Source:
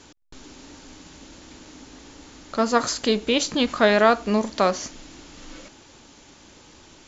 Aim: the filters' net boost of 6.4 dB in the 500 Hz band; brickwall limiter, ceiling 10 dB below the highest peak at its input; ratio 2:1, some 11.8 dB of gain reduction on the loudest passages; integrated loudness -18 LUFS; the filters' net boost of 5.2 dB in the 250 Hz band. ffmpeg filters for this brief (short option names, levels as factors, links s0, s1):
-af "equalizer=f=250:t=o:g=4.5,equalizer=f=500:t=o:g=7,acompressor=threshold=0.0282:ratio=2,volume=7.5,alimiter=limit=0.562:level=0:latency=1"